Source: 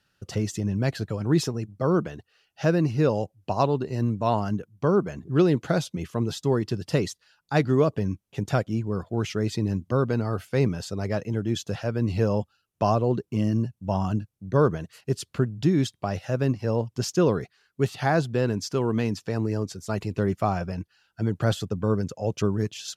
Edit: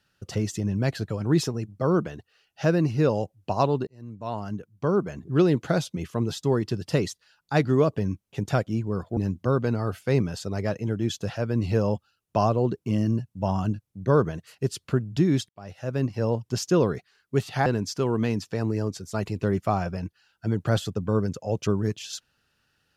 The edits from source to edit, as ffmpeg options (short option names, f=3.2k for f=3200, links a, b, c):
-filter_complex "[0:a]asplit=5[a][b][c][d][e];[a]atrim=end=3.87,asetpts=PTS-STARTPTS,afade=t=out:st=3.866:d=0.004:c=hsin[f];[b]atrim=start=3.87:end=9.172,asetpts=PTS-STARTPTS,afade=t=in:d=1.76:c=qsin[g];[c]atrim=start=9.628:end=15.95,asetpts=PTS-STARTPTS,afade=t=out:st=6.318:d=0.004:c=hsin[h];[d]atrim=start=15.95:end=18.122,asetpts=PTS-STARTPTS,afade=t=in:d=0.65[i];[e]atrim=start=18.408[j];[f][g]concat=n=2:v=0:a=1[k];[h][i]concat=n=2:v=0:a=1[l];[k][l]acrossfade=d=0.004:c1=hsin:c2=hsin[m];[m][j]acrossfade=d=0.004:c1=hsin:c2=hsin"